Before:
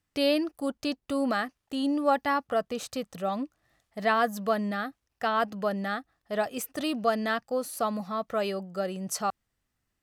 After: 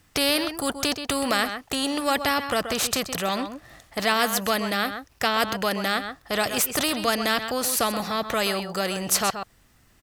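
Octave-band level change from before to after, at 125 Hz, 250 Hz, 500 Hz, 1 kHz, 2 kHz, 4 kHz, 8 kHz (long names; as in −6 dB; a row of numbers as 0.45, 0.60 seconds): +4.5, +1.5, +2.0, +3.5, +7.5, +12.5, +14.0 decibels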